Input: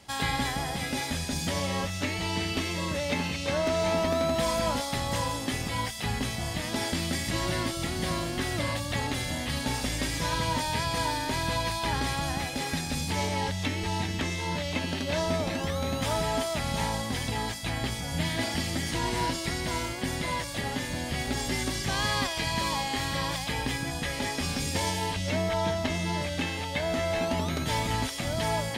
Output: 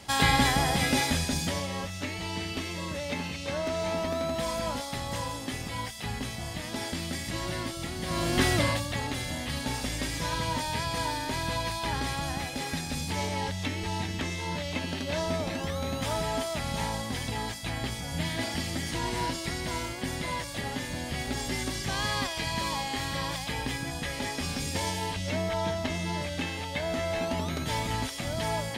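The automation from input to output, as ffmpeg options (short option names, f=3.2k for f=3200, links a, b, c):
-af "volume=17dB,afade=t=out:st=0.93:d=0.74:silence=0.316228,afade=t=in:st=8.07:d=0.35:silence=0.281838,afade=t=out:st=8.42:d=0.5:silence=0.354813"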